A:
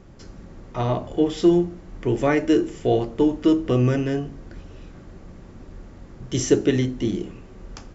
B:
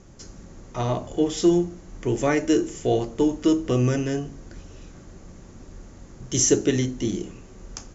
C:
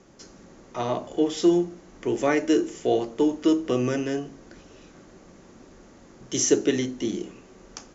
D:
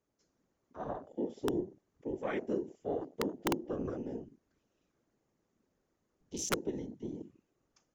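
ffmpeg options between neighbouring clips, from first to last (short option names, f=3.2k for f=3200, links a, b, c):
-af "lowpass=f=6.7k:t=q:w=5.1,volume=-2dB"
-filter_complex "[0:a]acrossover=split=190 6600:gain=0.178 1 0.224[a][b][c];[a][b][c]amix=inputs=3:normalize=0"
-af "afftfilt=real='hypot(re,im)*cos(2*PI*random(0))':imag='hypot(re,im)*sin(2*PI*random(1))':win_size=512:overlap=0.75,afwtdn=0.0158,aeval=exprs='(mod(5.96*val(0)+1,2)-1)/5.96':c=same,volume=-7dB"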